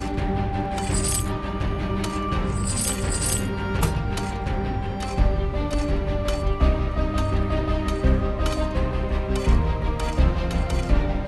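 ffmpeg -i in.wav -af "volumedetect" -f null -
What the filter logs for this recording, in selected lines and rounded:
mean_volume: -22.5 dB
max_volume: -7.2 dB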